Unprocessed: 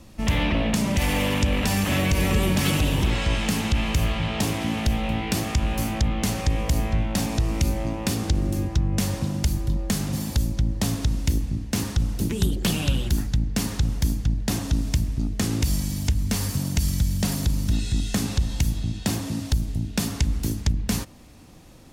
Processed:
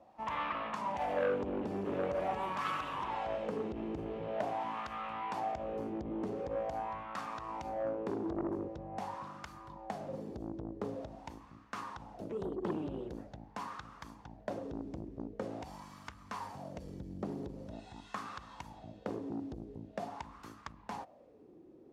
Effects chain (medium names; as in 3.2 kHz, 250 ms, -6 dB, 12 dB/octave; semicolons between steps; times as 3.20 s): wah-wah 0.45 Hz 360–1200 Hz, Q 5.8; transformer saturation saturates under 930 Hz; trim +4.5 dB